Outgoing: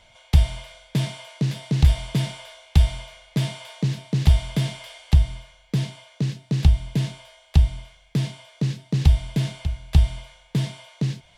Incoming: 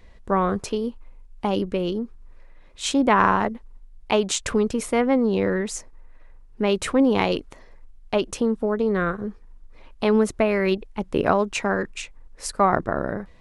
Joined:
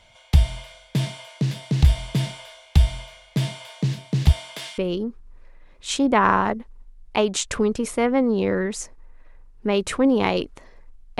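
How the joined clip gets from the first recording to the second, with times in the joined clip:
outgoing
4.31–4.78 HPF 270 Hz -> 1400 Hz
4.78 switch to incoming from 1.73 s

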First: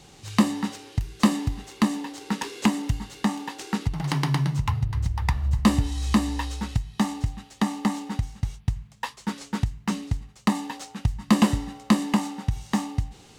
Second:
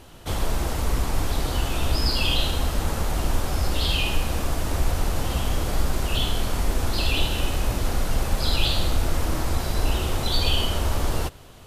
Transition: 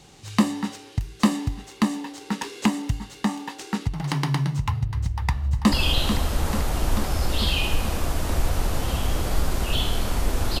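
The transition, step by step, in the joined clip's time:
first
5.15–5.72 echo throw 0.44 s, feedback 75%, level -7.5 dB
5.72 switch to second from 2.14 s

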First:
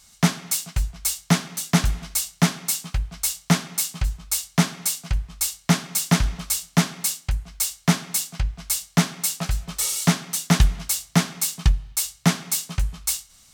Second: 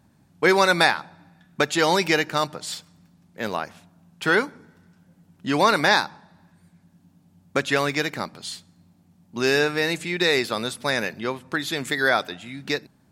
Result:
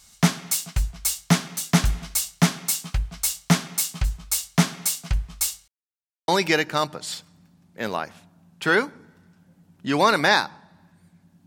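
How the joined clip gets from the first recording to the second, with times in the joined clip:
first
5.68–6.28 mute
6.28 switch to second from 1.88 s

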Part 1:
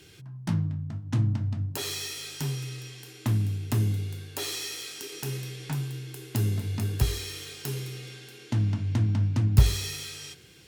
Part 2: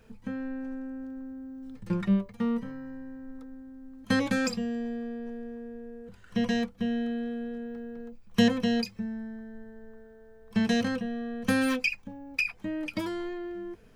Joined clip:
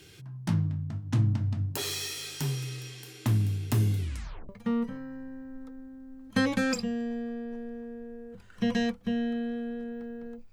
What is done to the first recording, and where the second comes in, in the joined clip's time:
part 1
3.98 tape stop 0.51 s
4.49 switch to part 2 from 2.23 s

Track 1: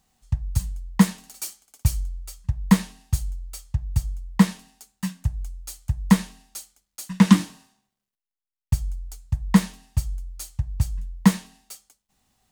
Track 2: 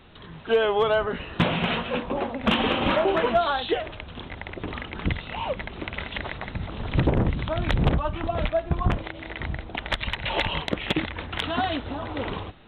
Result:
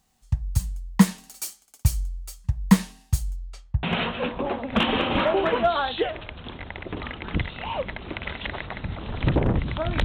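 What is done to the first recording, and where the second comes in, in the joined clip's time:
track 1
3.36–3.83 LPF 8000 Hz -> 1200 Hz
3.83 switch to track 2 from 1.54 s

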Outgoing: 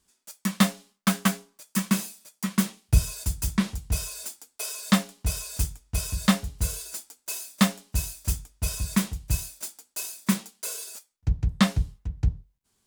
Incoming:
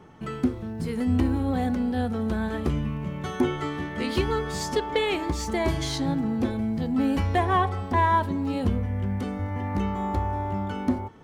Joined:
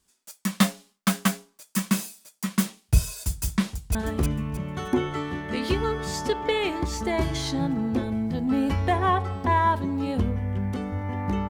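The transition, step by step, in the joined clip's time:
outgoing
3.68–3.95 echo throw 0.31 s, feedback 30%, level -3 dB
3.95 switch to incoming from 2.42 s

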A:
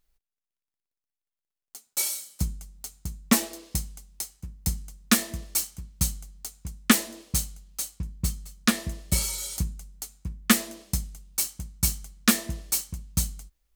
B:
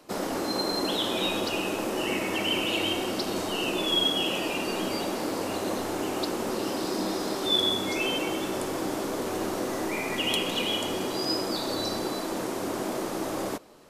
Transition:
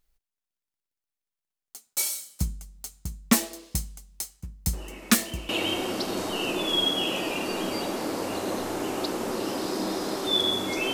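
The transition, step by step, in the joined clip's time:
A
4.73 add B from 1.92 s 0.76 s -15 dB
5.49 switch to B from 2.68 s

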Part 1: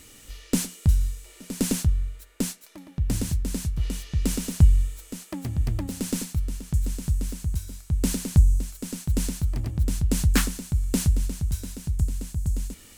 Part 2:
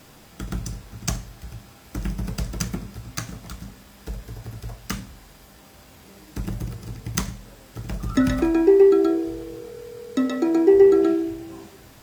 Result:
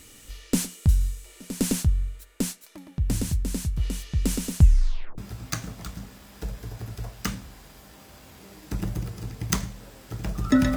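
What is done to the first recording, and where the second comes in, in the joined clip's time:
part 1
4.6 tape stop 0.58 s
5.18 switch to part 2 from 2.83 s

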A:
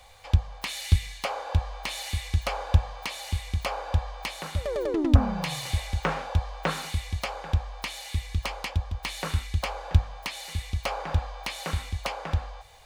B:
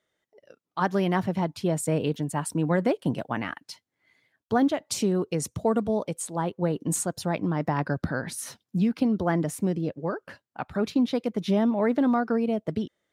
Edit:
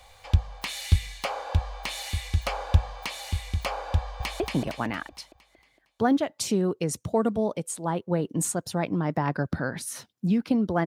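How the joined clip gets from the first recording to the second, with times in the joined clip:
A
3.97–4.4 echo throw 0.23 s, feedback 50%, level -2.5 dB
4.4 switch to B from 2.91 s

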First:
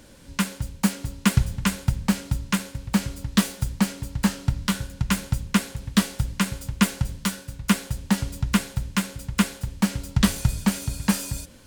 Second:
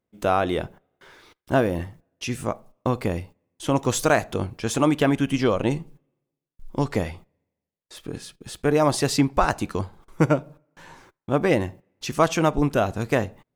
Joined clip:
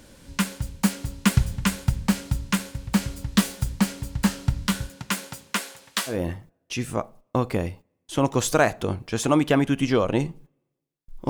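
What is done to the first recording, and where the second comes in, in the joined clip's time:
first
4.88–6.2 HPF 220 Hz -> 830 Hz
6.13 switch to second from 1.64 s, crossfade 0.14 s

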